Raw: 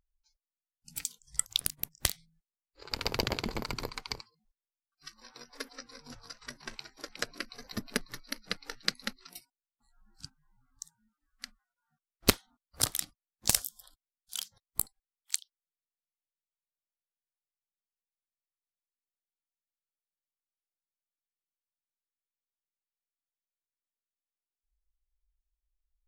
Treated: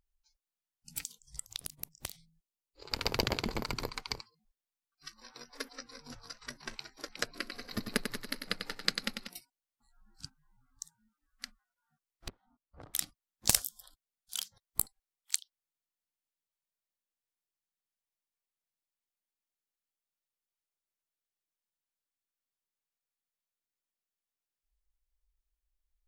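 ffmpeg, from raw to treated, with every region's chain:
-filter_complex "[0:a]asettb=1/sr,asplit=3[s0][s1][s2];[s0]atrim=end=1.024[s3];[s1]atrim=start=1.02:end=2.89,asetpts=PTS-STARTPTS,afade=t=in:d=0.004:c=qsin,afade=t=out:st=1.866:d=0.004:c=qsin,equalizer=f=1600:t=o:w=0.91:g=-8.5,acompressor=threshold=0.0178:ratio=12:attack=3.2:release=140:knee=1:detection=peak[s4];[s2]atrim=start=2.886[s5];[s3][s4]acrossfade=d=0.004:c1=hsin:c2=qsin[s6];[s6][s5]acrossfade=d=0.004:c1=qsin:c2=hsin,asettb=1/sr,asplit=3[s7][s8][s9];[s7]atrim=end=7.254[s10];[s8]atrim=start=7.25:end=9.28,asetpts=PTS-STARTPTS,afade=t=in:d=0.004:c=qsin,afade=t=out:st=2.026:d=0.004:c=qsin,bandreject=f=5800:w=10,aecho=1:1:95|190|285|380|475|570|665|760:0.447|0.264|0.155|0.0917|0.0541|0.0319|0.0188|0.0111,atrim=end_sample=89523[s11];[s9]atrim=start=9.276[s12];[s10][s11]acrossfade=d=0.004:c1=hsin:c2=qsin[s13];[s13][s12]acrossfade=d=0.004:c1=qsin:c2=hsin,asettb=1/sr,asplit=3[s14][s15][s16];[s14]atrim=end=12.284[s17];[s15]atrim=start=12.28:end=12.94,asetpts=PTS-STARTPTS,afade=t=in:d=0.004:c=qsin,afade=t=out:st=0.656:d=0.004:c=qsin,lowpass=1000,acompressor=threshold=0.00447:ratio=8:attack=3.2:release=140:knee=1:detection=peak[s18];[s16]atrim=start=12.936[s19];[s17][s18]acrossfade=d=0.004:c1=hsin:c2=qsin[s20];[s20][s19]acrossfade=d=0.004:c1=qsin:c2=hsin"

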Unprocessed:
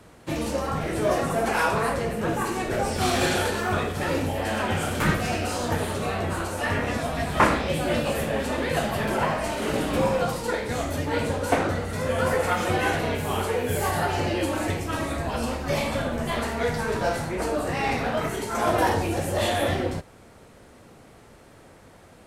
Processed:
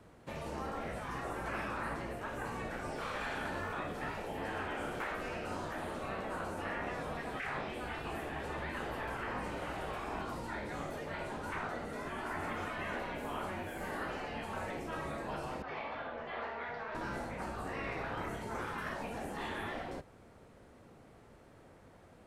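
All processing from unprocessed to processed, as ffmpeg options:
-filter_complex "[0:a]asettb=1/sr,asplit=3[s0][s1][s2];[s0]atrim=end=15.624[s3];[s1]atrim=start=15.62:end=16.95,asetpts=PTS-STARTPTS,afade=t=in:d=0.004:c=qsin,afade=t=out:st=1.326:d=0.004:c=qsin,lowpass=f=6300:w=0.5412,lowpass=f=6300:w=1.3066,acrossover=split=440 3700:gain=0.112 1 0.112[s4][s5][s6];[s4][s5][s6]amix=inputs=3:normalize=0[s7];[s2]atrim=start=16.946[s8];[s3][s7]acrossfade=d=0.004:c1=hsin:c2=qsin[s9];[s9][s8]acrossfade=d=0.004:c1=qsin:c2=hsin,highshelf=f=2800:g=-8,acrossover=split=2600[s10][s11];[s11]acompressor=threshold=0.00447:ratio=4:attack=1:release=60[s12];[s10][s12]amix=inputs=2:normalize=0,afftfilt=real='re*lt(hypot(re,im),0.178)':imag='im*lt(hypot(re,im),0.178)':win_size=1024:overlap=0.75,volume=0.422"

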